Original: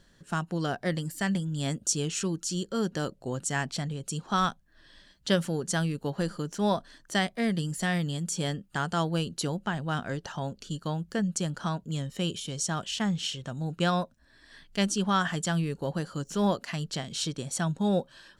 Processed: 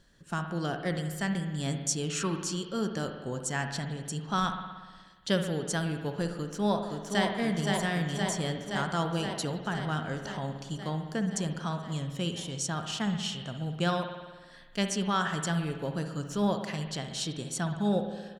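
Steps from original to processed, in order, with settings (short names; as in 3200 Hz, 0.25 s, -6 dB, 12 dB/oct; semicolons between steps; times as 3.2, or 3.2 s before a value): 2.1–2.62 bell 1200 Hz +13 dB 1.3 oct; 6.3–7.25 echo throw 0.52 s, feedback 75%, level -3 dB; spring tank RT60 1.4 s, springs 58 ms, chirp 25 ms, DRR 6 dB; gain -2.5 dB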